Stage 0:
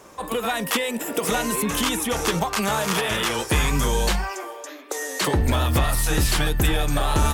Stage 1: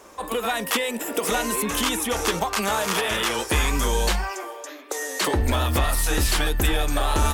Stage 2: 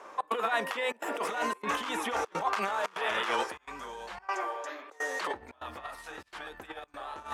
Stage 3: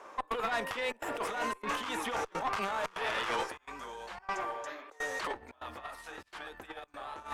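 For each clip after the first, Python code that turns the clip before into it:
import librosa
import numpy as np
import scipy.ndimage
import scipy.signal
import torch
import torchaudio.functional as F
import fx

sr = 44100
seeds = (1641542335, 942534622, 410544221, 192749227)

y1 = fx.peak_eq(x, sr, hz=140.0, db=-12.0, octaves=0.69)
y2 = fx.over_compress(y1, sr, threshold_db=-26.0, ratio=-0.5)
y2 = fx.step_gate(y2, sr, bpm=147, pattern='xx.xxxxxx.xxx', floor_db=-24.0, edge_ms=4.5)
y2 = fx.bandpass_q(y2, sr, hz=1100.0, q=0.84)
y2 = y2 * 10.0 ** (-1.5 / 20.0)
y3 = fx.tube_stage(y2, sr, drive_db=25.0, bias=0.5)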